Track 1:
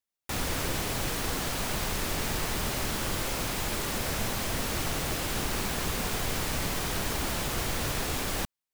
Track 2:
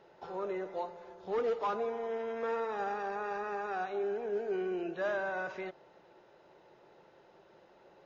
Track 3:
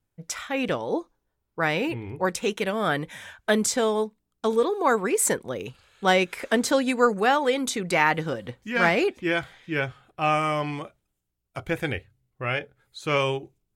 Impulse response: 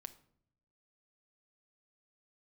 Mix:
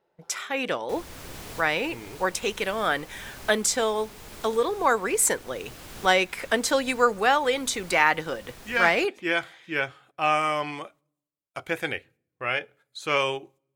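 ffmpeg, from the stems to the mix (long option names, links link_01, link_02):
-filter_complex "[0:a]adelay=600,volume=-8dB[link_01];[1:a]acompressor=threshold=-44dB:ratio=6,volume=-13dB[link_02];[2:a]highpass=frequency=550:poles=1,agate=range=-12dB:threshold=-56dB:ratio=16:detection=peak,volume=0.5dB,asplit=3[link_03][link_04][link_05];[link_04]volume=-10.5dB[link_06];[link_05]apad=whole_len=411804[link_07];[link_01][link_07]sidechaincompress=threshold=-29dB:ratio=8:attack=36:release=1210[link_08];[3:a]atrim=start_sample=2205[link_09];[link_06][link_09]afir=irnorm=-1:irlink=0[link_10];[link_08][link_02][link_03][link_10]amix=inputs=4:normalize=0"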